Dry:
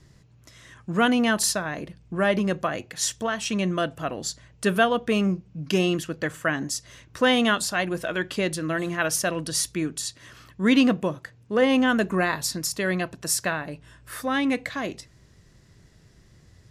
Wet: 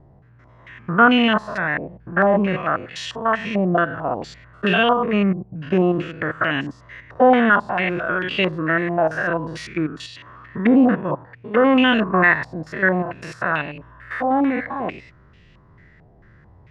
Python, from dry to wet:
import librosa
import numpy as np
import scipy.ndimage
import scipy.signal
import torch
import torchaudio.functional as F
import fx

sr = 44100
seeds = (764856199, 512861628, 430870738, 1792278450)

y = fx.spec_steps(x, sr, hold_ms=100)
y = fx.filter_held_lowpass(y, sr, hz=4.5, low_hz=760.0, high_hz=2800.0)
y = y * librosa.db_to_amplitude(5.0)